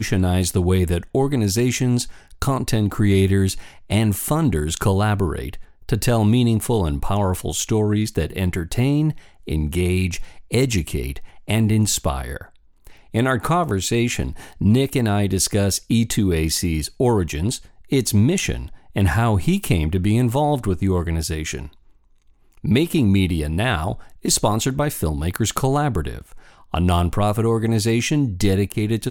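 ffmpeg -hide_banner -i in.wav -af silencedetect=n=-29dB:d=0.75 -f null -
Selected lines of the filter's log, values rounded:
silence_start: 21.67
silence_end: 22.64 | silence_duration: 0.98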